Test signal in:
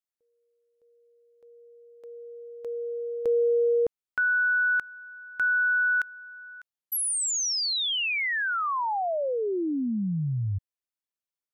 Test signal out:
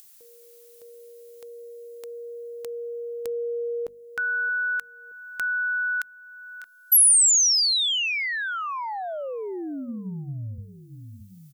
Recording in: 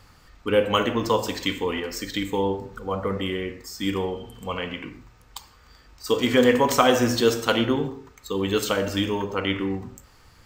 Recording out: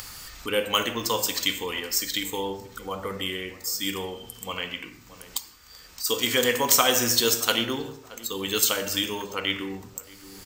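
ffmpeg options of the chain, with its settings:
-filter_complex "[0:a]crystalizer=i=7:c=0,bandreject=f=50:t=h:w=6,bandreject=f=100:t=h:w=6,bandreject=f=150:t=h:w=6,bandreject=f=200:t=h:w=6,bandreject=f=250:t=h:w=6,asplit=2[a][b];[b]adelay=624,lowpass=f=1.2k:p=1,volume=-19dB,asplit=2[c][d];[d]adelay=624,lowpass=f=1.2k:p=1,volume=0.28[e];[c][e]amix=inputs=2:normalize=0[f];[a][f]amix=inputs=2:normalize=0,acompressor=mode=upward:threshold=-19dB:ratio=2.5:attack=2.8:release=857:knee=2.83:detection=peak,volume=-7.5dB"

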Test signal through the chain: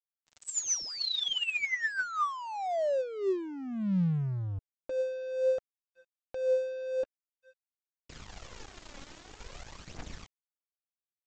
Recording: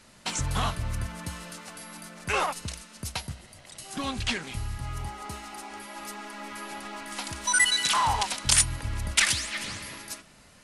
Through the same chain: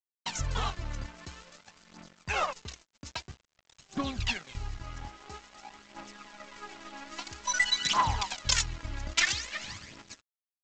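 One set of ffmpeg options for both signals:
-af "aphaser=in_gain=1:out_gain=1:delay=3.7:decay=0.59:speed=0.5:type=triangular,aresample=16000,aeval=exprs='sgn(val(0))*max(abs(val(0))-0.00841,0)':c=same,aresample=44100,volume=-4.5dB"

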